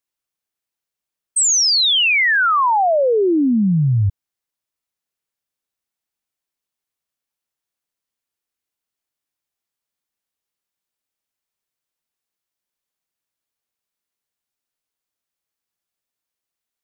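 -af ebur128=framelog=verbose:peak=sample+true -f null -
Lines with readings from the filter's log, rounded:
Integrated loudness:
  I:         -14.6 LUFS
  Threshold: -24.7 LUFS
Loudness range:
  LRA:        10.9 LU
  Threshold: -37.0 LUFS
  LRA low:   -25.4 LUFS
  LRA high:  -14.4 LUFS
Sample peak:
  Peak:      -12.1 dBFS
True peak:
  Peak:      -12.1 dBFS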